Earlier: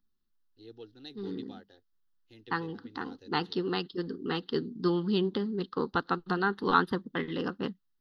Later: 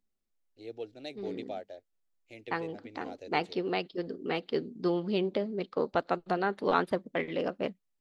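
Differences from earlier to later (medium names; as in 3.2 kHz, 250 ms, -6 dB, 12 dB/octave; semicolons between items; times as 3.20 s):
second voice -5.5 dB; master: remove static phaser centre 2.3 kHz, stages 6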